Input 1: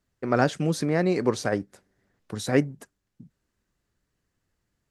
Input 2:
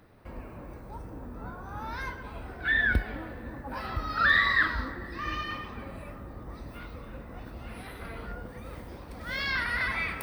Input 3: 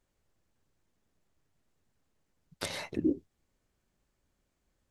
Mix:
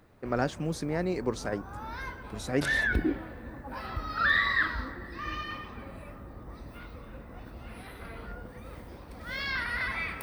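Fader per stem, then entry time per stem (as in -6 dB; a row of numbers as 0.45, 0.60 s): -7.0, -2.5, -0.5 dB; 0.00, 0.00, 0.00 s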